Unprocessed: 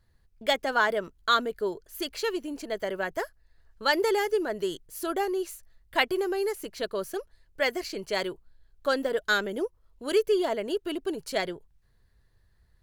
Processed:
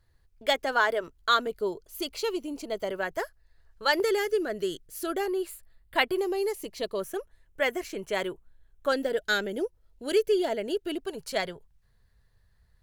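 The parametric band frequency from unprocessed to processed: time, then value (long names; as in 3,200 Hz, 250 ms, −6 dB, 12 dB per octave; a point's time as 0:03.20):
parametric band −14 dB 0.29 octaves
200 Hz
from 0:01.47 1,700 Hz
from 0:02.91 240 Hz
from 0:04.00 920 Hz
from 0:05.26 6,000 Hz
from 0:06.18 1,500 Hz
from 0:07.00 4,600 Hz
from 0:08.92 1,100 Hz
from 0:10.98 320 Hz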